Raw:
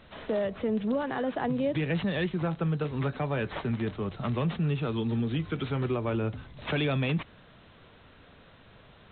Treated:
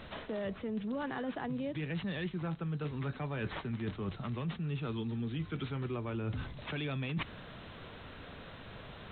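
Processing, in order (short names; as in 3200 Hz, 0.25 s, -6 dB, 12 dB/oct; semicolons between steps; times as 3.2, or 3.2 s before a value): dynamic EQ 590 Hz, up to -5 dB, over -44 dBFS, Q 1.3; reverse; compressor 10:1, threshold -40 dBFS, peak gain reduction 15 dB; reverse; gain +6 dB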